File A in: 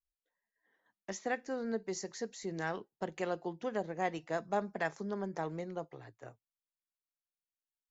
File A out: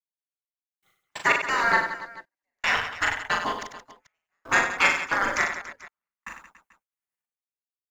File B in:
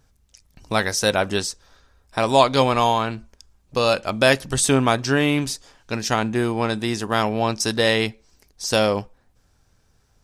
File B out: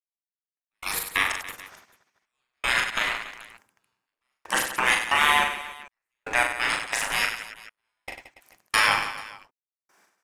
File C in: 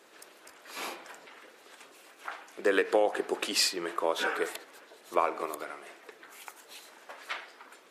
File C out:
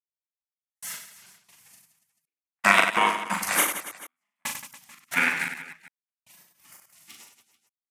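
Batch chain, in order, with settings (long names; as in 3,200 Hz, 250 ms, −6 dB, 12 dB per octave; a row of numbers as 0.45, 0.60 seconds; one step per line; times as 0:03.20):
gate on every frequency bin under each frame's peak −20 dB weak
graphic EQ with 10 bands 1,000 Hz +4 dB, 2,000 Hz +7 dB, 4,000 Hz −7 dB
in parallel at −0.5 dB: brickwall limiter −19.5 dBFS
on the sum: leveller curve on the samples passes 1
gate pattern ".....x.x.xx" 91 BPM −60 dB
on a send: reverse bouncing-ball delay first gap 40 ms, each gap 1.4×, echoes 5
on the sum: loudness normalisation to −24 LKFS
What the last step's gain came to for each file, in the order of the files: +17.5, +0.5, +8.0 decibels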